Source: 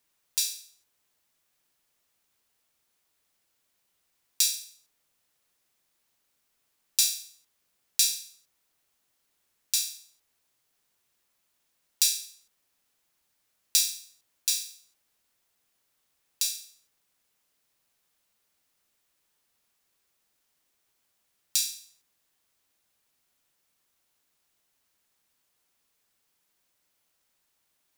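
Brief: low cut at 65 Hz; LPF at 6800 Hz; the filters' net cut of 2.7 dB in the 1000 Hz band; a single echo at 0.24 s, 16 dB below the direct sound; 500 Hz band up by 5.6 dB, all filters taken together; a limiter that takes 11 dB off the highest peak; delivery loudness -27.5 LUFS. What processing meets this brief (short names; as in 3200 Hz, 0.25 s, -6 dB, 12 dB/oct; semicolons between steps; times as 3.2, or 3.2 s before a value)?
HPF 65 Hz; LPF 6800 Hz; bell 500 Hz +8.5 dB; bell 1000 Hz -6 dB; limiter -18 dBFS; echo 0.24 s -16 dB; gain +7.5 dB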